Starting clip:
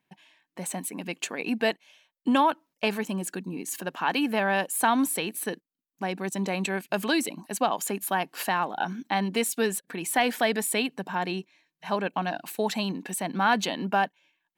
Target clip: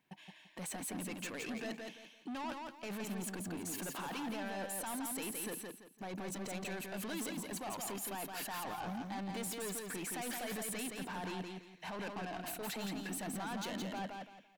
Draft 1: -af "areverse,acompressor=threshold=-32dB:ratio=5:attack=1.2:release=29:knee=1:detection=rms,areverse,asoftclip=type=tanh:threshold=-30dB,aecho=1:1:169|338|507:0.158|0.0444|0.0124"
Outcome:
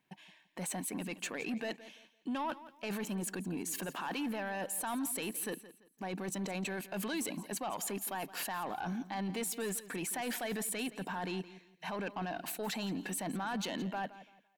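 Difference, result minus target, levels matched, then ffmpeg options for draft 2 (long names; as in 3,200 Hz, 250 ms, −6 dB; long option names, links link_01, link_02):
echo-to-direct −12 dB; soft clipping: distortion −9 dB
-af "areverse,acompressor=threshold=-32dB:ratio=5:attack=1.2:release=29:knee=1:detection=rms,areverse,asoftclip=type=tanh:threshold=-39.5dB,aecho=1:1:169|338|507|676:0.631|0.177|0.0495|0.0139"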